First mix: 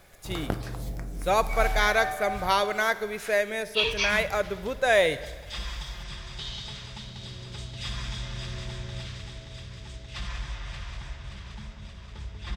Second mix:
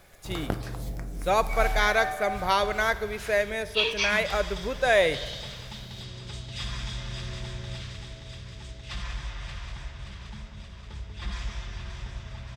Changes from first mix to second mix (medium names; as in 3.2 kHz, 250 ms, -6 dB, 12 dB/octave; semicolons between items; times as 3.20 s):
speech: add treble shelf 9.9 kHz -5.5 dB; second sound: entry -1.25 s